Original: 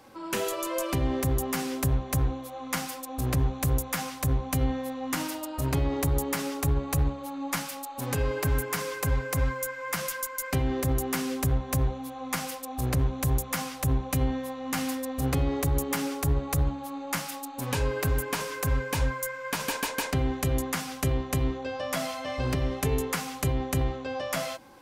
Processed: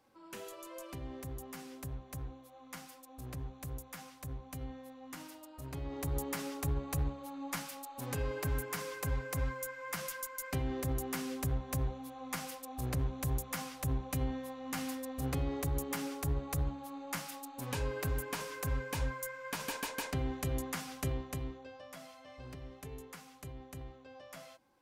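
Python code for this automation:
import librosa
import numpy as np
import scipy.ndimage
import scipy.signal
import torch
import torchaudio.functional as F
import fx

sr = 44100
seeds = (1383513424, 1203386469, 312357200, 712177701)

y = fx.gain(x, sr, db=fx.line((5.68, -17.0), (6.19, -8.5), (21.07, -8.5), (21.95, -20.0)))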